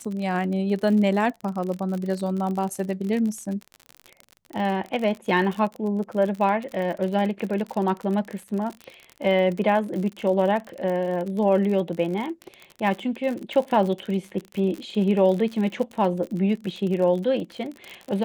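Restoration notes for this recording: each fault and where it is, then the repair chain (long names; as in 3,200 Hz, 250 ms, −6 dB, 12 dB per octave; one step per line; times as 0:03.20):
surface crackle 48 per second −29 dBFS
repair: click removal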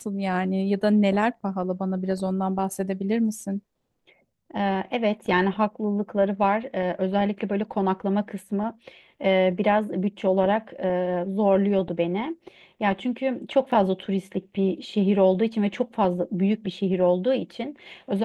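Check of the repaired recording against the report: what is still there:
none of them is left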